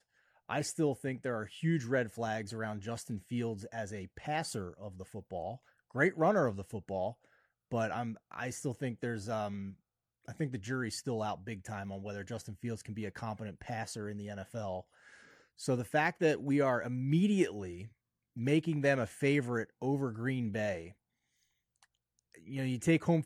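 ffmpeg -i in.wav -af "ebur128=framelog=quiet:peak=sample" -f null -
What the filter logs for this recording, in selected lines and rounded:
Integrated loudness:
  I:         -35.4 LUFS
  Threshold: -45.8 LUFS
Loudness range:
  LRA:         8.2 LU
  Threshold: -56.1 LUFS
  LRA low:   -40.7 LUFS
  LRA high:  -32.5 LUFS
Sample peak:
  Peak:      -14.5 dBFS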